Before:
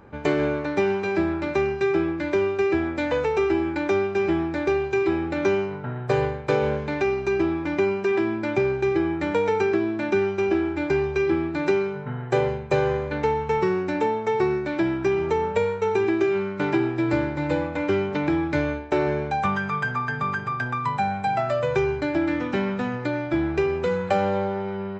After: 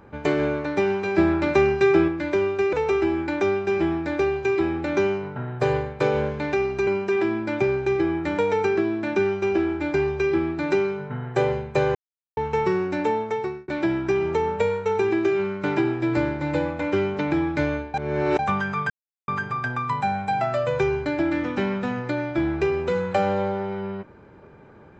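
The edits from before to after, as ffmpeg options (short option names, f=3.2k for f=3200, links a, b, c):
-filter_complex "[0:a]asplit=12[a][b][c][d][e][f][g][h][i][j][k][l];[a]atrim=end=1.182[m];[b]atrim=start=1.178:end=2.082,asetpts=PTS-STARTPTS,volume=4.5dB[n];[c]atrim=start=2.078:end=2.732[o];[d]atrim=start=3.208:end=7.352[p];[e]atrim=start=7.828:end=12.91,asetpts=PTS-STARTPTS,afade=t=out:st=5.078:d=0.004:c=hsin[q];[f]atrim=start=12.91:end=13.33,asetpts=PTS-STARTPTS,volume=0[r];[g]atrim=start=13.33:end=14.64,asetpts=PTS-STARTPTS,afade=t=in:d=0.004:c=hsin,afade=t=out:st=0.84:d=0.47[s];[h]atrim=start=14.64:end=18.902,asetpts=PTS-STARTPTS,afade=t=in:d=0.004:c=hsin[t];[i]atrim=start=18.898:end=19.352,asetpts=PTS-STARTPTS,areverse[u];[j]atrim=start=19.348:end=19.86,asetpts=PTS-STARTPTS,afade=t=out:st=0.508:d=0.004:c=hsin[v];[k]atrim=start=19.86:end=20.24,asetpts=PTS-STARTPTS,volume=0[w];[l]atrim=start=20.24,asetpts=PTS-STARTPTS,afade=t=in:d=0.004:c=hsin[x];[m][n]acrossfade=d=0.004:c1=hsin:c2=hsin[y];[y][o]acrossfade=d=0.004:c1=hsin:c2=hsin[z];[z][p]acrossfade=d=0.004:c1=hsin:c2=hsin[aa];[q][r][s][t]concat=n=4:v=0:a=1[ab];[aa][ab]acrossfade=d=0.004:c1=hsin:c2=hsin[ac];[ac][u]acrossfade=d=0.004:c1=hsin:c2=hsin[ad];[v][w][x]concat=n=3:v=0:a=1[ae];[ad][ae]acrossfade=d=0.004:c1=hsin:c2=hsin"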